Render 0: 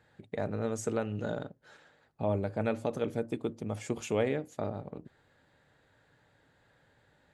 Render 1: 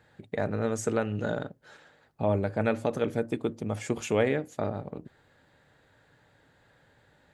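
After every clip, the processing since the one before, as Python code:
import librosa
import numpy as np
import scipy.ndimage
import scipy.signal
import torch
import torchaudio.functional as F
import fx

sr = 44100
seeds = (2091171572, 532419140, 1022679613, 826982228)

y = fx.dynamic_eq(x, sr, hz=1700.0, q=1.9, threshold_db=-52.0, ratio=4.0, max_db=4)
y = F.gain(torch.from_numpy(y), 4.0).numpy()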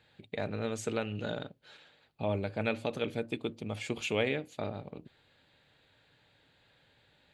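y = fx.band_shelf(x, sr, hz=3200.0, db=10.5, octaves=1.2)
y = F.gain(torch.from_numpy(y), -6.0).numpy()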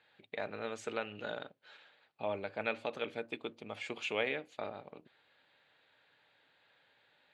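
y = fx.bandpass_q(x, sr, hz=1400.0, q=0.54)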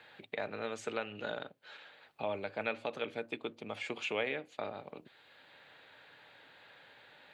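y = fx.band_squash(x, sr, depth_pct=40)
y = F.gain(torch.from_numpy(y), 1.0).numpy()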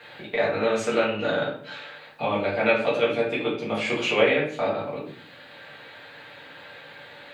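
y = fx.room_shoebox(x, sr, seeds[0], volume_m3=64.0, walls='mixed', distance_m=1.7)
y = F.gain(torch.from_numpy(y), 6.0).numpy()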